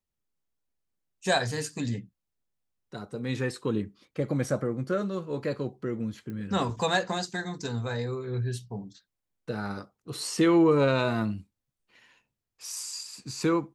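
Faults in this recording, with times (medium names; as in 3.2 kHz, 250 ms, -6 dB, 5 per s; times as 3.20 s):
6.30 s: pop -28 dBFS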